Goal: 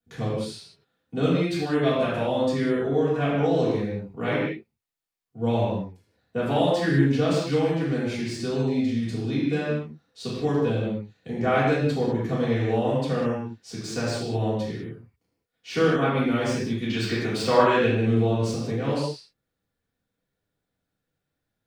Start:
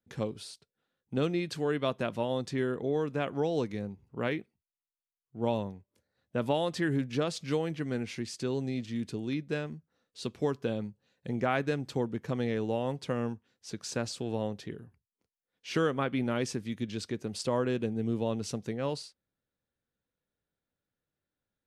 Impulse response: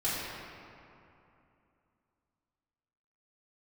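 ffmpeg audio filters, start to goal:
-filter_complex "[0:a]asplit=3[link_01][link_02][link_03];[link_01]afade=type=out:start_time=16.82:duration=0.02[link_04];[link_02]equalizer=frequency=1800:width_type=o:width=2.8:gain=11,afade=type=in:start_time=16.82:duration=0.02,afade=type=out:start_time=18.1:duration=0.02[link_05];[link_03]afade=type=in:start_time=18.1:duration=0.02[link_06];[link_04][link_05][link_06]amix=inputs=3:normalize=0,acrossover=split=3500[link_07][link_08];[link_08]asoftclip=type=tanh:threshold=-36.5dB[link_09];[link_07][link_09]amix=inputs=2:normalize=0[link_10];[1:a]atrim=start_sample=2205,afade=type=out:start_time=0.26:duration=0.01,atrim=end_sample=11907[link_11];[link_10][link_11]afir=irnorm=-1:irlink=0"

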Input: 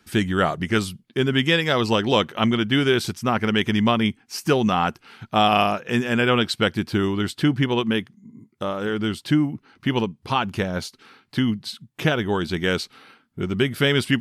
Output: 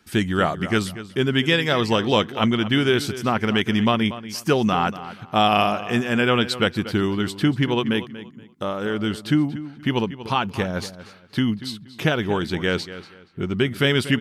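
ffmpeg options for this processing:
ffmpeg -i in.wav -filter_complex "[0:a]asettb=1/sr,asplit=3[link_01][link_02][link_03];[link_01]atrim=end=12.544[link_04];[link_02]atrim=start=12.54:end=13.79,asetpts=PTS-STARTPTS,afade=type=in:duration=0.004:curve=qsin,afade=type=out:start_time=1.246:duration=0.004:curve=qsin,highshelf=frequency=7900:gain=-7.5[link_05];[link_03]atrim=start=13.786[link_06];[link_04][link_05]acrossfade=duration=0.004:curve1=hsin:curve2=qsin[link_07];[link_07][link_06]acrossfade=duration=0.004:curve1=qsin:curve2=hsin,asplit=2[link_08][link_09];[link_09]adelay=237,lowpass=frequency=4700:poles=1,volume=-14dB,asplit=2[link_10][link_11];[link_11]adelay=237,lowpass=frequency=4700:poles=1,volume=0.26,asplit=2[link_12][link_13];[link_13]adelay=237,lowpass=frequency=4700:poles=1,volume=0.26[link_14];[link_08][link_10][link_12][link_14]amix=inputs=4:normalize=0" out.wav

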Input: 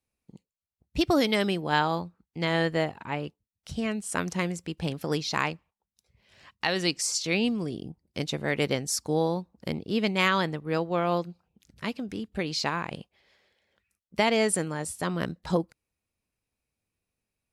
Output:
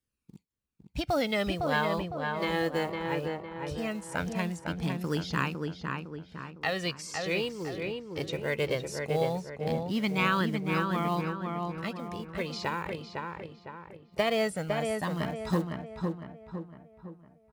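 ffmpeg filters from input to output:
ffmpeg -i in.wav -filter_complex "[0:a]flanger=delay=0.6:depth=1.8:regen=-8:speed=0.19:shape=triangular,acrossover=split=3500[link_01][link_02];[link_02]acompressor=threshold=-42dB:ratio=4:attack=1:release=60[link_03];[link_01][link_03]amix=inputs=2:normalize=0,acrossover=split=1300[link_04][link_05];[link_04]acrusher=bits=6:mode=log:mix=0:aa=0.000001[link_06];[link_06][link_05]amix=inputs=2:normalize=0,asplit=2[link_07][link_08];[link_08]adelay=507,lowpass=frequency=2200:poles=1,volume=-3.5dB,asplit=2[link_09][link_10];[link_10]adelay=507,lowpass=frequency=2200:poles=1,volume=0.48,asplit=2[link_11][link_12];[link_12]adelay=507,lowpass=frequency=2200:poles=1,volume=0.48,asplit=2[link_13][link_14];[link_14]adelay=507,lowpass=frequency=2200:poles=1,volume=0.48,asplit=2[link_15][link_16];[link_16]adelay=507,lowpass=frequency=2200:poles=1,volume=0.48,asplit=2[link_17][link_18];[link_18]adelay=507,lowpass=frequency=2200:poles=1,volume=0.48[link_19];[link_07][link_09][link_11][link_13][link_15][link_17][link_19]amix=inputs=7:normalize=0" out.wav

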